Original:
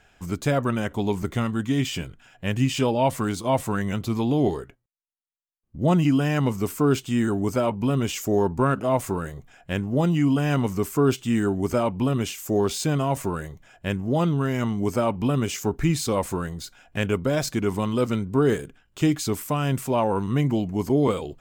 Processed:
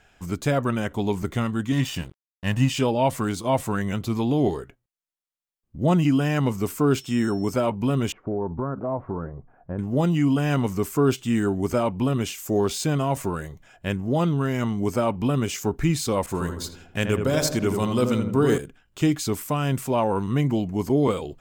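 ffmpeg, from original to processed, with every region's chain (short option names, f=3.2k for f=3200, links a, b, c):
-filter_complex "[0:a]asettb=1/sr,asplit=3[a][b][c];[a]atrim=end=1.724[d];[b]atrim=start=1.72:end=2.7,asetpts=PTS-STARTPTS,afade=t=in:d=0.004:c=qsin,afade=t=out:st=0.976:d=0.004:c=qsin,aecho=1:1:1.1:0.63,atrim=end_sample=43218,aeval=exprs='sgn(val(0))*max(abs(val(0))-0.0126,0)':c=same[e];[c]atrim=start=2.696[f];[d][e]acrossfade=d=0.004:c1=hsin:c2=qsin[g];[g][f]acrossfade=d=0.004:c1=qsin:c2=hsin,asettb=1/sr,asplit=3[h][i][j];[h]atrim=end=7.004[k];[i]atrim=start=7:end=7.54,asetpts=PTS-STARTPTS,afade=t=in:d=0.004:c=qsin,afade=t=out:st=0.536:d=0.004:c=qsin,highpass=97,aeval=exprs='val(0)+0.00447*sin(2*PI*5400*n/s)':c=same[l];[j]atrim=start=7.536[m];[k][l]acrossfade=d=0.004:c1=hsin:c2=qsin[n];[n][m]acrossfade=d=0.004:c1=qsin:c2=hsin,asettb=1/sr,asplit=3[o][p][q];[o]atrim=end=8.124[r];[p]atrim=start=8.12:end=9.79,asetpts=PTS-STARTPTS,afade=t=in:d=0.004:c=qsin,afade=t=out:st=1.666:d=0.004:c=qsin,lowpass=f=1.2k:w=0.5412,lowpass=f=1.2k:w=1.3066,acompressor=threshold=-24dB:ratio=3:attack=3.2:release=140:knee=1:detection=peak[s];[q]atrim=start=9.786[t];[r][s]acrossfade=d=0.004:c1=hsin:c2=qsin[u];[u][t]acrossfade=d=0.004:c1=qsin:c2=hsin,asettb=1/sr,asplit=3[v][w][x];[v]atrim=end=16.264[y];[w]atrim=start=16.26:end=18.58,asetpts=PTS-STARTPTS,afade=t=in:d=0.004:c=qsin,afade=t=out:st=2.316:d=0.004:c=qsin,asplit=2[z][aa];[aa]adelay=81,lowpass=f=1.4k:p=1,volume=-5dB,asplit=2[ab][ac];[ac]adelay=81,lowpass=f=1.4k:p=1,volume=0.55,asplit=2[ad][ae];[ae]adelay=81,lowpass=f=1.4k:p=1,volume=0.55,asplit=2[af][ag];[ag]adelay=81,lowpass=f=1.4k:p=1,volume=0.55,asplit=2[ah][ai];[ai]adelay=81,lowpass=f=1.4k:p=1,volume=0.55,asplit=2[aj][ak];[ak]adelay=81,lowpass=f=1.4k:p=1,volume=0.55,asplit=2[al][am];[am]adelay=81,lowpass=f=1.4k:p=1,volume=0.55[an];[z][ab][ad][af][ah][aj][al][an]amix=inputs=8:normalize=0,atrim=end_sample=102312,adynamicequalizer=threshold=0.00708:dfrequency=3200:dqfactor=0.7:tfrequency=3200:tqfactor=0.7:attack=5:release=100:ratio=0.375:range=2.5:mode=boostabove:tftype=highshelf[ao];[x]atrim=start=18.576[ap];[y][ao]acrossfade=d=0.004:c1=hsin:c2=qsin[aq];[aq][ap]acrossfade=d=0.004:c1=qsin:c2=hsin"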